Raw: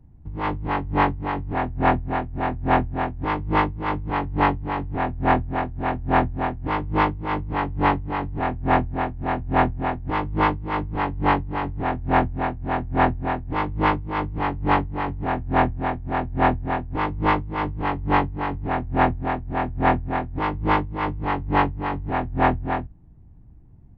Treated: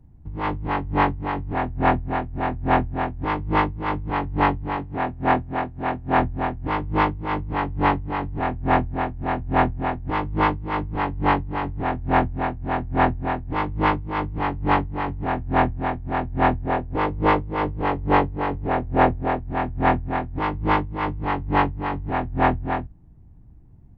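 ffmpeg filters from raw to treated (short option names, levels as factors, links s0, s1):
-filter_complex "[0:a]asettb=1/sr,asplit=3[s0][s1][s2];[s0]atrim=end=4.764[s3];[s1]atrim=start=4.76:end=6.19,asetpts=PTS-STARTPTS,afade=t=in:d=0.004:c=qsin,afade=t=out:st=1.426:d=0.004:c=qsin,lowshelf=f=67:g=-12[s4];[s2]atrim=start=6.186[s5];[s3][s4]acrossfade=d=0.004:c1=hsin:c2=qsin[s6];[s6][s5]acrossfade=d=0.004:c1=qsin:c2=hsin,asettb=1/sr,asplit=3[s7][s8][s9];[s7]atrim=end=16.654[s10];[s8]atrim=start=16.65:end=19.4,asetpts=PTS-STARTPTS,afade=t=in:d=0.004:c=qsin,afade=t=out:st=2.746:d=0.004:c=qsin,equalizer=f=490:t=o:w=0.77:g=7[s11];[s9]atrim=start=19.396[s12];[s10][s11]acrossfade=d=0.004:c1=hsin:c2=qsin[s13];[s13][s12]acrossfade=d=0.004:c1=qsin:c2=hsin"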